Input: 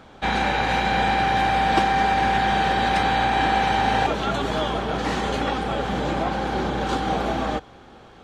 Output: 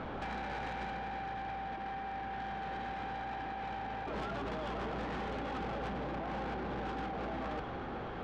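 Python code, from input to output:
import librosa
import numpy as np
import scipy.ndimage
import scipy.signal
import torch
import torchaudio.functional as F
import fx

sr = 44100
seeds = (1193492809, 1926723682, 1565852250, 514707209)

y = scipy.signal.sosfilt(scipy.signal.butter(2, 2200.0, 'lowpass', fs=sr, output='sos'), x)
y = fx.over_compress(y, sr, threshold_db=-33.0, ratio=-1.0)
y = 10.0 ** (-33.0 / 20.0) * np.tanh(y / 10.0 ** (-33.0 / 20.0))
y = F.gain(torch.from_numpy(y), -2.0).numpy()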